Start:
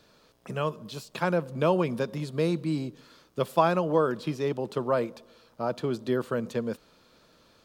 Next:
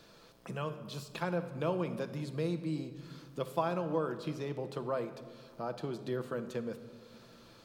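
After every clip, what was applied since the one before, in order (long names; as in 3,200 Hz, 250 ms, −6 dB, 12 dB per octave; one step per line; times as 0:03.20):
downward compressor 1.5 to 1, threshold −54 dBFS, peak gain reduction 13.5 dB
rectangular room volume 2,000 cubic metres, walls mixed, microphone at 0.75 metres
level +1.5 dB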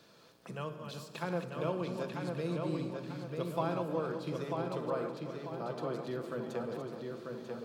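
feedback delay that plays each chunk backwards 185 ms, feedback 48%, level −7.5 dB
high-pass filter 96 Hz
feedback echo with a low-pass in the loop 942 ms, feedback 42%, low-pass 4,800 Hz, level −4 dB
level −2.5 dB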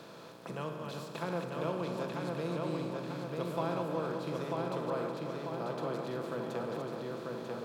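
compressor on every frequency bin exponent 0.6
level −3 dB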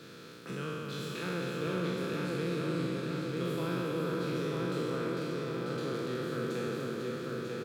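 peak hold with a decay on every bin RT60 2.61 s
flat-topped bell 780 Hz −14 dB 1.1 octaves
single-tap delay 493 ms −6.5 dB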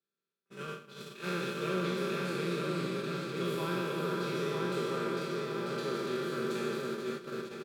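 noise gate −36 dBFS, range −45 dB
bass and treble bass −7 dB, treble 0 dB
comb filter 5.1 ms, depth 88%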